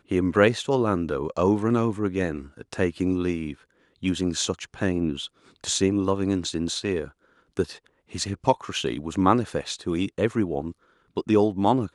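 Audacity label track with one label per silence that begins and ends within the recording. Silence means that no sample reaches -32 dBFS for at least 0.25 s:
3.530000	4.030000	silence
5.260000	5.640000	silence
7.070000	7.570000	silence
7.750000	8.150000	silence
10.710000	11.170000	silence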